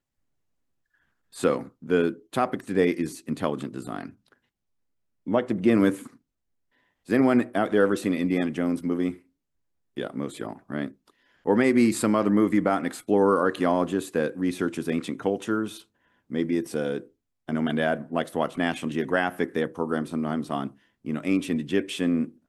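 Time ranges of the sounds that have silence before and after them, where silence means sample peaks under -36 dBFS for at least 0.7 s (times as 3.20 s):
1.36–4.09 s
5.27–6.07 s
7.09–9.14 s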